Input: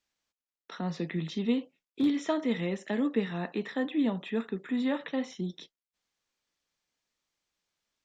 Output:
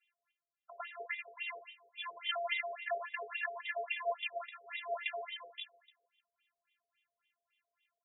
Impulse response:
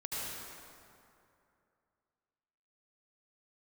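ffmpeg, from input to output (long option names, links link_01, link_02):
-filter_complex "[0:a]afftfilt=real='hypot(re,im)*cos(PI*b)':imag='0':win_size=512:overlap=0.75,highpass=120,equalizer=frequency=430:width_type=q:width=4:gain=6,equalizer=frequency=910:width_type=q:width=4:gain=-6,equalizer=frequency=2800:width_type=q:width=4:gain=9,lowpass=frequency=5000:width=0.5412,lowpass=frequency=5000:width=1.3066,acrossover=split=480|1500[link_01][link_02][link_03];[link_01]asoftclip=type=tanh:threshold=-38dB[link_04];[link_04][link_02][link_03]amix=inputs=3:normalize=0,aecho=1:1:151|302|453|604|755:0.158|0.0888|0.0497|0.0278|0.0156,afftfilt=real='re*between(b*sr/1024,560*pow(2700/560,0.5+0.5*sin(2*PI*3.6*pts/sr))/1.41,560*pow(2700/560,0.5+0.5*sin(2*PI*3.6*pts/sr))*1.41)':imag='im*between(b*sr/1024,560*pow(2700/560,0.5+0.5*sin(2*PI*3.6*pts/sr))/1.41,560*pow(2700/560,0.5+0.5*sin(2*PI*3.6*pts/sr))*1.41)':win_size=1024:overlap=0.75,volume=9.5dB"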